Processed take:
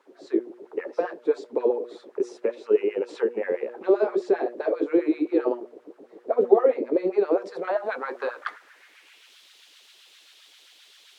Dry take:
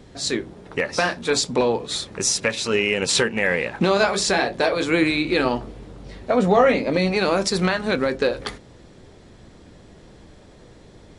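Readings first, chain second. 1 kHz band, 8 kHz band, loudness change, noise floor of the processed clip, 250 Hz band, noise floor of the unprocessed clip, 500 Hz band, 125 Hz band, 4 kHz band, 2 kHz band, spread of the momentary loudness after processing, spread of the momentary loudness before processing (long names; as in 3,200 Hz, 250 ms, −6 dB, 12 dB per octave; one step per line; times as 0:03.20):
−8.5 dB, below −30 dB, −4.5 dB, −56 dBFS, −4.5 dB, −48 dBFS, −1.5 dB, below −25 dB, below −20 dB, −15.0 dB, 9 LU, 10 LU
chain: background noise white −45 dBFS
auto-filter high-pass sine 7.6 Hz 300–1,600 Hz
hum removal 120.2 Hz, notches 5
band-pass filter sweep 380 Hz → 3,400 Hz, 0:07.26–0:09.36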